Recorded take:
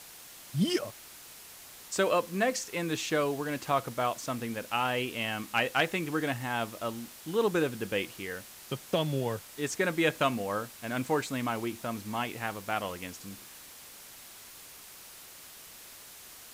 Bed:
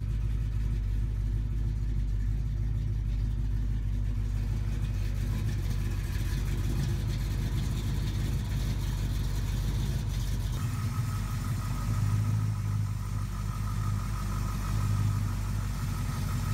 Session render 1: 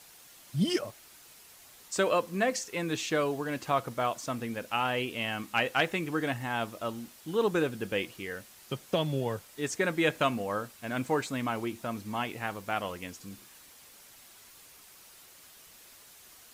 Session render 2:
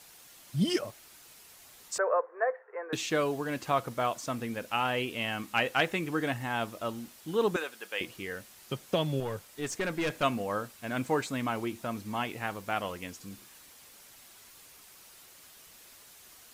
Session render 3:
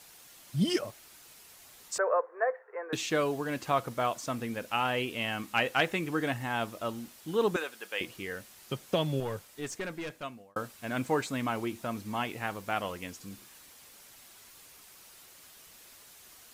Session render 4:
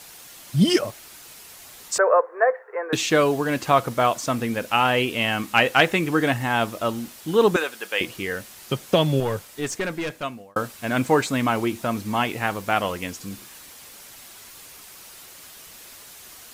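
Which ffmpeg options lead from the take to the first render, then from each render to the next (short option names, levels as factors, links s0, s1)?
-af "afftdn=nr=6:nf=-50"
-filter_complex "[0:a]asettb=1/sr,asplit=3[s0][s1][s2];[s0]atrim=end=1.984[s3];[s1]atrim=start=1.98:end=2.93,asetpts=PTS-STARTPTS,afade=t=in:d=0.004:c=qsin,afade=t=out:st=0.946:d=0.004:c=qsin,asuperpass=centerf=870:order=12:qfactor=0.64[s4];[s2]atrim=start=2.926[s5];[s3][s4]acrossfade=d=0.004:c1=hsin:c2=qsin[s6];[s6][s5]acrossfade=d=0.004:c1=qsin:c2=hsin,asettb=1/sr,asplit=3[s7][s8][s9];[s7]atrim=end=7.564[s10];[s8]atrim=start=7.56:end=8.01,asetpts=PTS-STARTPTS,afade=t=in:d=0.004:c=qsin,afade=t=out:st=0.446:d=0.004:c=qsin,highpass=790[s11];[s9]atrim=start=8.006[s12];[s10][s11]acrossfade=d=0.004:c1=hsin:c2=qsin[s13];[s13][s12]acrossfade=d=0.004:c1=qsin:c2=hsin,asettb=1/sr,asplit=3[s14][s15][s16];[s14]atrim=end=9.204[s17];[s15]atrim=start=9.2:end=10.23,asetpts=PTS-STARTPTS,afade=t=in:d=0.004:c=qsin,afade=t=out:st=1.026:d=0.004:c=qsin,aeval=exprs='(tanh(20*val(0)+0.25)-tanh(0.25))/20':c=same[s18];[s16]atrim=start=10.226[s19];[s17][s18]acrossfade=d=0.004:c1=hsin:c2=qsin[s20];[s20][s19]acrossfade=d=0.004:c1=qsin:c2=hsin"
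-filter_complex "[0:a]asplit=2[s0][s1];[s0]atrim=end=10.56,asetpts=PTS-STARTPTS,afade=t=out:st=9.32:d=1.24[s2];[s1]atrim=start=10.56,asetpts=PTS-STARTPTS,afade=t=in:d=0.004:c=hsin[s3];[s2][s3]concat=n=2:v=0:a=1"
-af "volume=3.16"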